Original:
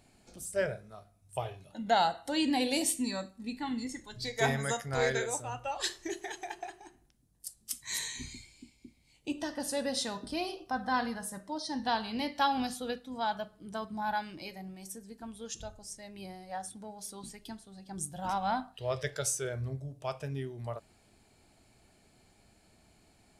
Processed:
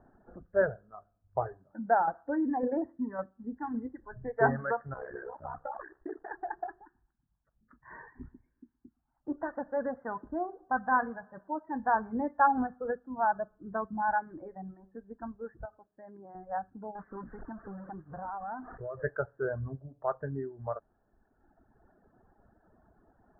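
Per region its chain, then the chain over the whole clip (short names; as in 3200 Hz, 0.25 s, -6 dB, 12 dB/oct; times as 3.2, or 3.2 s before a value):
1.52–4.02 HPF 43 Hz + tremolo saw down 1.8 Hz, depth 45%
4.93–6.31 block floating point 3-bit + compressor, threshold -35 dBFS + ring modulator 32 Hz
6.84–11.96 tilt shelf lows -4.5 dB, about 850 Hz + envelope phaser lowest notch 410 Hz, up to 3600 Hz, full sweep at -36 dBFS + warbling echo 0.117 s, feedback 49%, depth 64 cents, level -19.5 dB
15.65–16.35 HPF 260 Hz 6 dB/oct + compressor 4:1, threshold -47 dBFS
16.95–19.03 zero-crossing step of -40 dBFS + compressor 4:1, threshold -41 dBFS + decimation joined by straight lines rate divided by 3×
whole clip: steep low-pass 1700 Hz 96 dB/oct; reverb removal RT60 1.6 s; bell 120 Hz -5.5 dB 1.5 oct; gain +5.5 dB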